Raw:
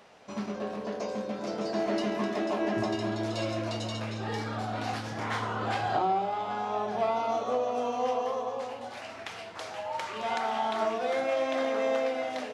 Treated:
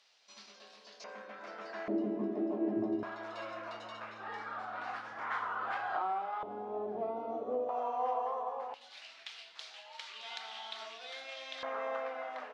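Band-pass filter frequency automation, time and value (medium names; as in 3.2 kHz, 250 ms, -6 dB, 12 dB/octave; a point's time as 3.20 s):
band-pass filter, Q 2
4.5 kHz
from 1.04 s 1.6 kHz
from 1.88 s 310 Hz
from 3.03 s 1.3 kHz
from 6.43 s 350 Hz
from 7.69 s 910 Hz
from 8.74 s 3.8 kHz
from 11.63 s 1.2 kHz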